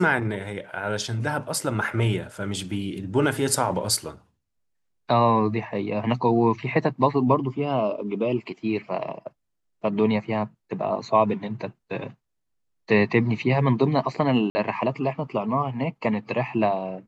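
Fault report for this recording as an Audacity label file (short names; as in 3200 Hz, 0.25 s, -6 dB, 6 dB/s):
14.500000	14.550000	gap 50 ms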